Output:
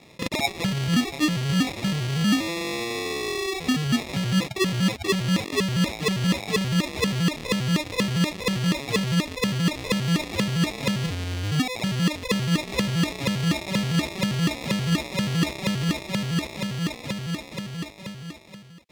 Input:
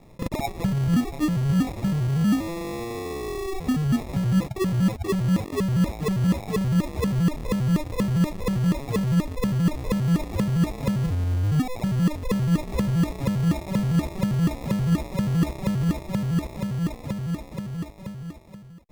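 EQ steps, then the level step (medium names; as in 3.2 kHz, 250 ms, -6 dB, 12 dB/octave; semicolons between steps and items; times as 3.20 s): frequency weighting D; +1.5 dB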